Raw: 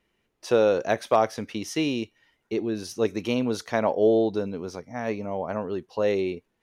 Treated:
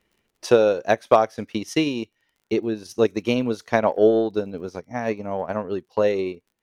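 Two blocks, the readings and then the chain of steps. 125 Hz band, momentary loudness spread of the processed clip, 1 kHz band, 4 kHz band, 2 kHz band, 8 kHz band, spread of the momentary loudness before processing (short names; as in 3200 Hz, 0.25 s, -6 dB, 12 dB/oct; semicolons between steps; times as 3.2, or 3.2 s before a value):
+2.5 dB, 13 LU, +4.0 dB, +2.5 dB, +4.0 dB, +0.5 dB, 11 LU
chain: transient shaper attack +5 dB, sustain -9 dB; crackle 38/s -51 dBFS; gain +2 dB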